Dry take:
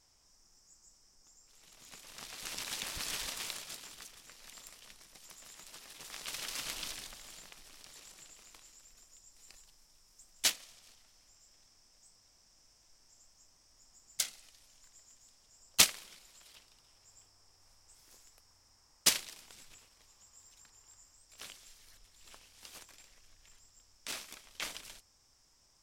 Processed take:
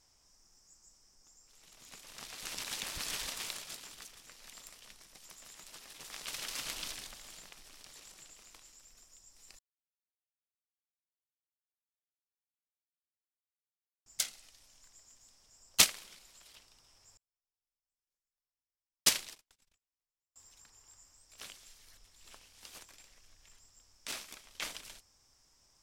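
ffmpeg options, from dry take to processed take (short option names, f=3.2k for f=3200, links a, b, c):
-filter_complex "[0:a]asettb=1/sr,asplit=3[a][b][c];[a]atrim=end=17.174[d];[b]atrim=start=17.17:end=20.36,asetpts=PTS-STARTPTS,afade=t=in:d=0.004:c=qsin,afade=t=out:st=3.186:d=0.004:c=qsin,agate=range=-38dB:threshold=-53dB:ratio=16:release=100:detection=peak[e];[c]atrim=start=20.356[f];[d][e]acrossfade=d=0.004:c1=hsin:c2=qsin[g];[g][f]acrossfade=d=0.004:c1=qsin:c2=hsin,asplit=3[h][i][j];[h]atrim=end=9.59,asetpts=PTS-STARTPTS,afade=t=out:st=9.586:d=0.004:c=hsin[k];[i]atrim=start=9.59:end=14.06,asetpts=PTS-STARTPTS,volume=0[l];[j]atrim=start=14.06,asetpts=PTS-STARTPTS,afade=t=in:d=0.004:c=hsin[m];[k][l][m]concat=n=3:v=0:a=1"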